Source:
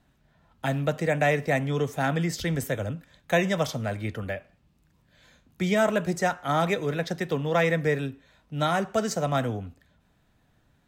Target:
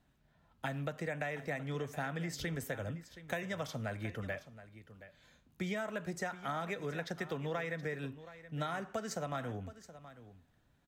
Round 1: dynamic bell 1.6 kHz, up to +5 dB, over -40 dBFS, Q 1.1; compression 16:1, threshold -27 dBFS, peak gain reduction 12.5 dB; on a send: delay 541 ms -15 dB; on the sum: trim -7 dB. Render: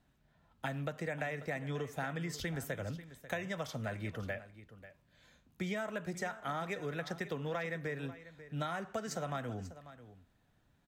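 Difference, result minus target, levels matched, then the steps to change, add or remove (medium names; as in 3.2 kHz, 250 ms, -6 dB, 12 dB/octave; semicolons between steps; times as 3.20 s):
echo 182 ms early
change: delay 723 ms -15 dB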